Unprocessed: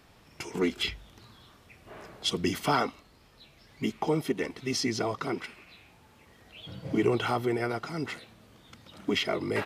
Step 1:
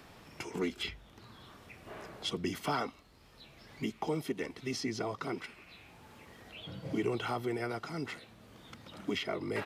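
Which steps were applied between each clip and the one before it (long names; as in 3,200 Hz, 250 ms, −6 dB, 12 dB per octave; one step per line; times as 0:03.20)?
multiband upward and downward compressor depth 40%
level −6 dB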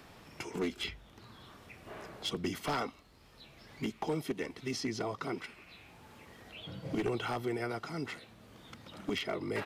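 wavefolder on the positive side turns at −27.5 dBFS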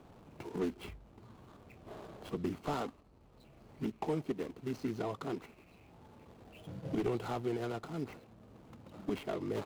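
running median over 25 samples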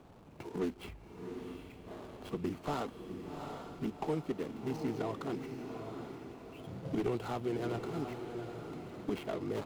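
feedback delay with all-pass diffusion 752 ms, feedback 45%, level −6 dB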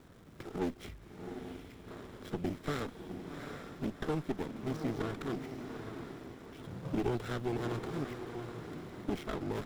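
lower of the sound and its delayed copy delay 0.55 ms
surface crackle 450 per second −58 dBFS
level +1 dB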